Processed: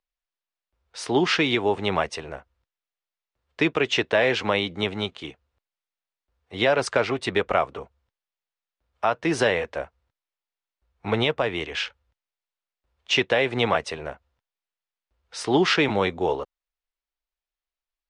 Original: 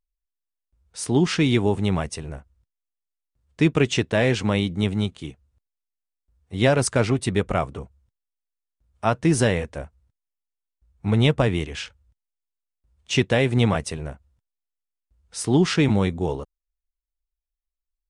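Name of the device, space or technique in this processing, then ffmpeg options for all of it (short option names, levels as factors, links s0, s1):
DJ mixer with the lows and highs turned down: -filter_complex "[0:a]acrossover=split=390 5000:gain=0.141 1 0.0891[s0][s1][s2];[s0][s1][s2]amix=inputs=3:normalize=0,alimiter=limit=0.158:level=0:latency=1:release=360,volume=2.11"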